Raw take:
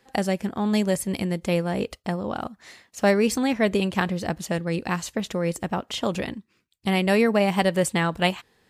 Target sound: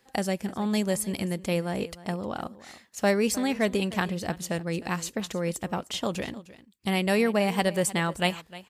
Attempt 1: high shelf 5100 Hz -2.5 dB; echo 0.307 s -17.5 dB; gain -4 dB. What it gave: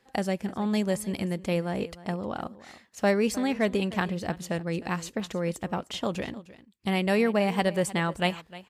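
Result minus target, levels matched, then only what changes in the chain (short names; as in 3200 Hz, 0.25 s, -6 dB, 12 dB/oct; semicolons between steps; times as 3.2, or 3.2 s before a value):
8000 Hz band -5.5 dB
change: high shelf 5100 Hz +6 dB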